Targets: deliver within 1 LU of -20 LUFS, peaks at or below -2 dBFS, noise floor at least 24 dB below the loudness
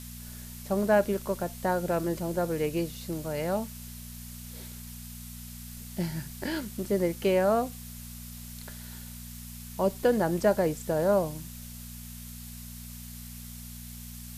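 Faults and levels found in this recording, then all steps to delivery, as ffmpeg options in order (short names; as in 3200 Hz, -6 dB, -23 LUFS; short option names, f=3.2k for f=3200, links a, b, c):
hum 60 Hz; harmonics up to 240 Hz; hum level -42 dBFS; noise floor -43 dBFS; noise floor target -53 dBFS; loudness -29.0 LUFS; peak -11.5 dBFS; loudness target -20.0 LUFS
-> -af "bandreject=f=60:t=h:w=4,bandreject=f=120:t=h:w=4,bandreject=f=180:t=h:w=4,bandreject=f=240:t=h:w=4"
-af "afftdn=nr=10:nf=-43"
-af "volume=9dB"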